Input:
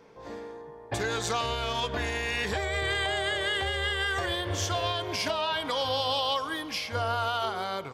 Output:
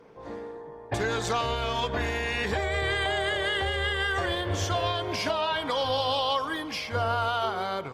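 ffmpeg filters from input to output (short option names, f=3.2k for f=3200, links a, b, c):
-af "highshelf=f=3.3k:g=-6.5,acontrast=89,volume=-4.5dB" -ar 48000 -c:a libopus -b:a 24k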